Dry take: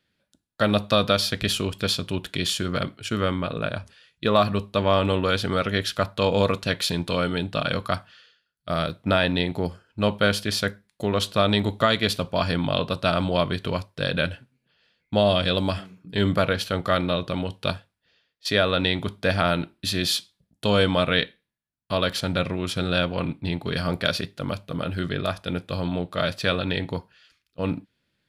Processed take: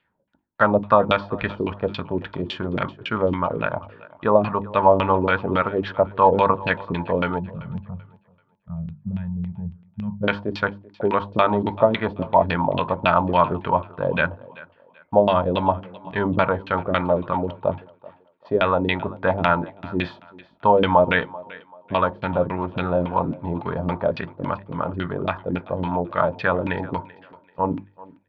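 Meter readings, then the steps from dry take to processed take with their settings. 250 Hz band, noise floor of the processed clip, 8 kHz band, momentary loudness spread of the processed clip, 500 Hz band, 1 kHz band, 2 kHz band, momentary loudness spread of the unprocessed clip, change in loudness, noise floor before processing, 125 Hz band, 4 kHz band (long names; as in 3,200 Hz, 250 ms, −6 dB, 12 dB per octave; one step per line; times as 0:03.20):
+0.5 dB, −60 dBFS, below −30 dB, 13 LU, +3.5 dB, +7.5 dB, +1.0 dB, 9 LU, +2.0 dB, −78 dBFS, −1.0 dB, −10.0 dB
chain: gain on a spectral selection 0:07.39–0:10.23, 230–8,000 Hz −30 dB
parametric band 930 Hz +14 dB 0.39 octaves
mains-hum notches 50/100/150/200/250/300/350 Hz
auto-filter low-pass saw down 3.6 Hz 270–2,900 Hz
high-frequency loss of the air 100 metres
on a send: feedback echo with a high-pass in the loop 386 ms, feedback 32%, high-pass 240 Hz, level −19.5 dB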